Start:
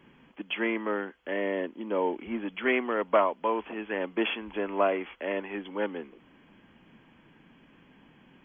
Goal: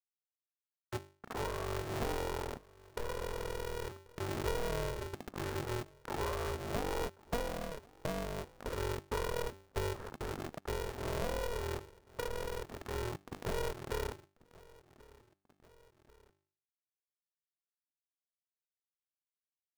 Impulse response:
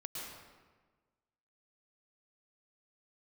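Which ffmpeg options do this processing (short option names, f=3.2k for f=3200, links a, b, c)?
-filter_complex "[0:a]acrossover=split=370 2000:gain=0.0708 1 0.0708[a][b][c];[a][b][c]amix=inputs=3:normalize=0,afwtdn=0.0126,aresample=8000,acrusher=bits=7:mix=0:aa=0.000001,aresample=44100,asetrate=18846,aresample=44100,bandreject=f=50:t=h:w=6,bandreject=f=100:t=h:w=6,bandreject=f=150:t=h:w=6,acompressor=threshold=-42dB:ratio=12,lowshelf=f=81:g=8,asplit=2[d][e];[e]aecho=0:1:1088|2176:0.0668|0.014[f];[d][f]amix=inputs=2:normalize=0,aphaser=in_gain=1:out_gain=1:delay=1.9:decay=0.21:speed=0.43:type=sinusoidal,acompressor=mode=upward:threshold=-58dB:ratio=2.5,aeval=exprs='val(0)*sgn(sin(2*PI*240*n/s))':c=same,volume=6.5dB"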